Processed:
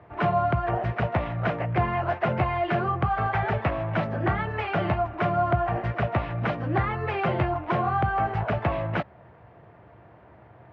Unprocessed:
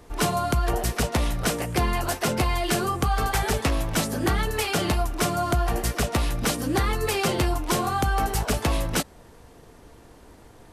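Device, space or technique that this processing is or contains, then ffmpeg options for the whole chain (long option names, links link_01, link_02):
bass cabinet: -af "highpass=frequency=79:width=0.5412,highpass=frequency=79:width=1.3066,equalizer=frequency=120:width_type=q:width=4:gain=6,equalizer=frequency=260:width_type=q:width=4:gain=-10,equalizer=frequency=450:width_type=q:width=4:gain=-6,equalizer=frequency=650:width_type=q:width=4:gain=6,lowpass=frequency=2300:width=0.5412,lowpass=frequency=2300:width=1.3066"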